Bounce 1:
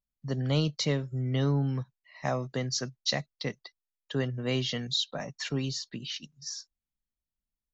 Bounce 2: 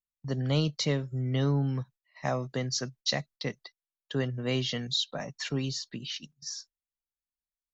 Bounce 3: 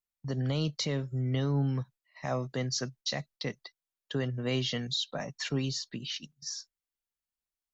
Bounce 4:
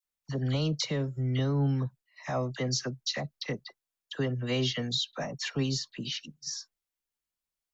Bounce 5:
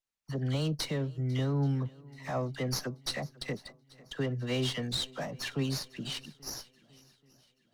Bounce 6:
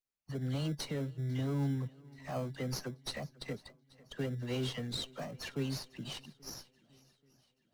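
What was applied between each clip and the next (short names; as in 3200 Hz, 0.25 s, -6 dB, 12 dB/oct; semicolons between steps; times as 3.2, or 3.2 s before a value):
gate -51 dBFS, range -13 dB
limiter -21.5 dBFS, peak gain reduction 6.5 dB
dispersion lows, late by 49 ms, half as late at 1400 Hz; gain +1.5 dB
swung echo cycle 0.831 s, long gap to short 1.5:1, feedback 38%, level -23 dB; running maximum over 3 samples; gain -2 dB
bin magnitudes rounded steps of 15 dB; in parallel at -10 dB: sample-and-hold 24×; on the sum: gain -6 dB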